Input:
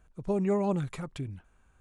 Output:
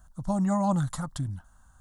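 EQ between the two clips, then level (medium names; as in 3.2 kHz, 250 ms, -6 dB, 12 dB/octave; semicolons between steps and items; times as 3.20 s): treble shelf 3.8 kHz +7 dB; static phaser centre 1 kHz, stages 4; +7.0 dB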